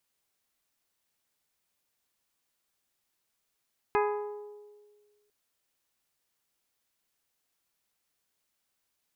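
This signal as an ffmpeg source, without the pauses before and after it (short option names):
-f lavfi -i "aevalsrc='0.0631*pow(10,-3*t/1.67)*sin(2*PI*416*t)+0.0473*pow(10,-3*t/1.028)*sin(2*PI*832*t)+0.0355*pow(10,-3*t/0.905)*sin(2*PI*998.4*t)+0.0266*pow(10,-3*t/0.774)*sin(2*PI*1248*t)+0.02*pow(10,-3*t/0.633)*sin(2*PI*1664*t)+0.015*pow(10,-3*t/0.541)*sin(2*PI*2080*t)+0.0112*pow(10,-3*t/0.476)*sin(2*PI*2496*t)':d=1.35:s=44100"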